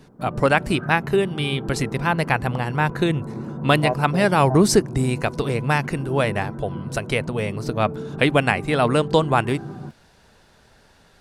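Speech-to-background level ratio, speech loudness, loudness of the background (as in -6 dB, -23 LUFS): 10.5 dB, -21.5 LUFS, -32.0 LUFS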